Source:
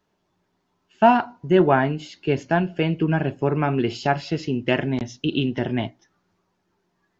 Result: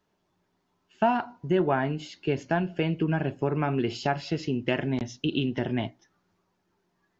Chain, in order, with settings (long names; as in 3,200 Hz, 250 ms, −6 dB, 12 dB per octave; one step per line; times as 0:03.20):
downward compressor 2 to 1, threshold −21 dBFS, peak gain reduction 7 dB
level −2.5 dB